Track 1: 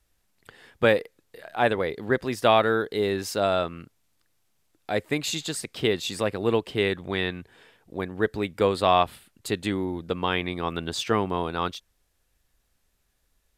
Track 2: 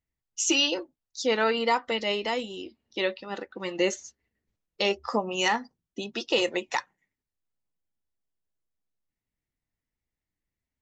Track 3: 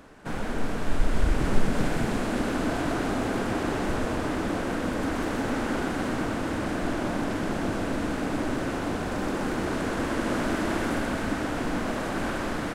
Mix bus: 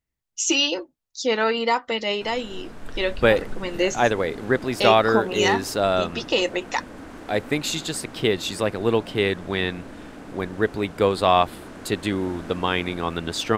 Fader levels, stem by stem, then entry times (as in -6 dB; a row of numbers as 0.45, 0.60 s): +2.5, +3.0, -11.5 dB; 2.40, 0.00, 1.95 s